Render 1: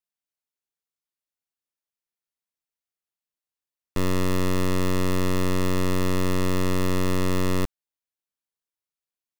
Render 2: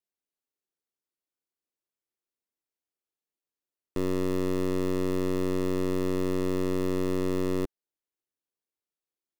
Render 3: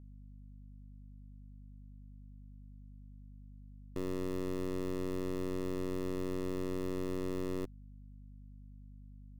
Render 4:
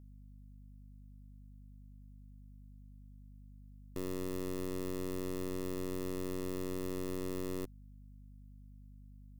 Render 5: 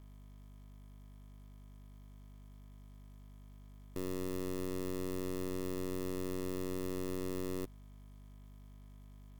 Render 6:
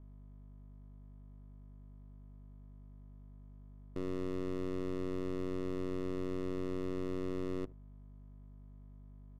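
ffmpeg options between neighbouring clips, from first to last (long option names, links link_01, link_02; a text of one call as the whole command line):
ffmpeg -i in.wav -af "equalizer=frequency=360:width=1:gain=11.5,alimiter=limit=-14.5dB:level=0:latency=1,volume=-5dB" out.wav
ffmpeg -i in.wav -af "aeval=exprs='val(0)+0.00794*(sin(2*PI*50*n/s)+sin(2*PI*2*50*n/s)/2+sin(2*PI*3*50*n/s)/3+sin(2*PI*4*50*n/s)/4+sin(2*PI*5*50*n/s)/5)':channel_layout=same,volume=-9dB" out.wav
ffmpeg -i in.wav -af "crystalizer=i=1.5:c=0,volume=-2dB" out.wav
ffmpeg -i in.wav -af "acrusher=bits=10:mix=0:aa=0.000001" out.wav
ffmpeg -i in.wav -af "aecho=1:1:73:0.0794,acrusher=bits=7:mode=log:mix=0:aa=0.000001,adynamicsmooth=sensitivity=7:basefreq=930,volume=1dB" out.wav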